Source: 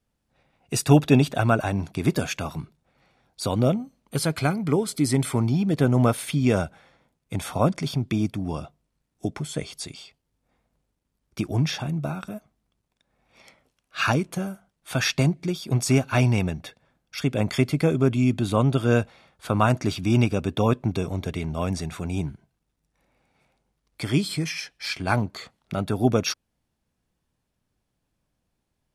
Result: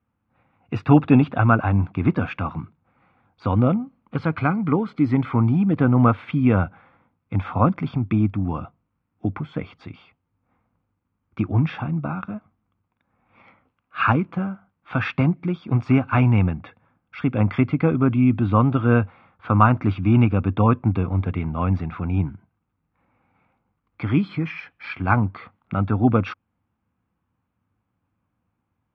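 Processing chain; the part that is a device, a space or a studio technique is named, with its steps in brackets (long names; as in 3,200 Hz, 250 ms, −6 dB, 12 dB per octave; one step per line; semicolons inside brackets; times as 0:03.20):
bass cabinet (loudspeaker in its box 88–2,200 Hz, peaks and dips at 97 Hz +7 dB, 140 Hz −6 dB, 400 Hz −9 dB, 620 Hz −9 dB, 1,200 Hz +4 dB, 1,800 Hz −7 dB)
level +5.5 dB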